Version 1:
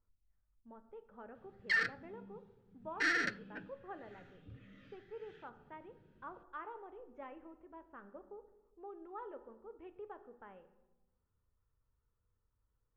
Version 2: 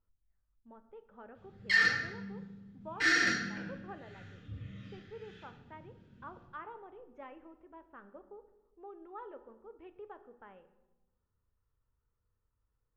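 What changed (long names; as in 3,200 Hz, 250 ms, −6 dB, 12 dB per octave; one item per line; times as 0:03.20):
background: send on
master: add high-shelf EQ 3,700 Hz +8 dB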